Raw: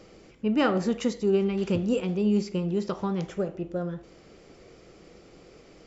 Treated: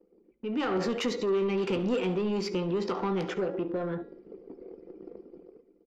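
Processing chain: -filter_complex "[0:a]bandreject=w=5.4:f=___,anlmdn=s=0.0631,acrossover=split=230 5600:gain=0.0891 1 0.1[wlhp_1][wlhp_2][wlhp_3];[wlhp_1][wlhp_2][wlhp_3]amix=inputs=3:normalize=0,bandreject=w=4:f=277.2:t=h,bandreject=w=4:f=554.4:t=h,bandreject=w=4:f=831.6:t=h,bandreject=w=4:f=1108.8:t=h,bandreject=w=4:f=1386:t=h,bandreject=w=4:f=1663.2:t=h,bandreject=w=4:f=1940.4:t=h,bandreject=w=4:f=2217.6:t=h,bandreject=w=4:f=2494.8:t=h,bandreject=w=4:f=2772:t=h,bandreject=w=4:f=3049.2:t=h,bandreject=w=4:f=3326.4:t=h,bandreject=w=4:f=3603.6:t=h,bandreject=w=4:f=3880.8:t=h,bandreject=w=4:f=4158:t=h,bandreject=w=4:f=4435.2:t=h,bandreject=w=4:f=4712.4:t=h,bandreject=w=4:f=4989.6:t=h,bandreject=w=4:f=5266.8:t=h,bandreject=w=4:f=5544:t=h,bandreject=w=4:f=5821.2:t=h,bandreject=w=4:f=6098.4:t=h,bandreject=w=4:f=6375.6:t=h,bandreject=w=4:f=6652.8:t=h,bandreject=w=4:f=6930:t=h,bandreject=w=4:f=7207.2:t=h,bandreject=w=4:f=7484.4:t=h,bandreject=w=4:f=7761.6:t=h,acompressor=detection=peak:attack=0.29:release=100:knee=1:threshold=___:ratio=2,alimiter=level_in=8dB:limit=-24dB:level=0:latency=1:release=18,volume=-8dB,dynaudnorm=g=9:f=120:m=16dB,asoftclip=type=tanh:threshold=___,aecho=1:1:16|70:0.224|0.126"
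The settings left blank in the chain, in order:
600, -47dB, -23dB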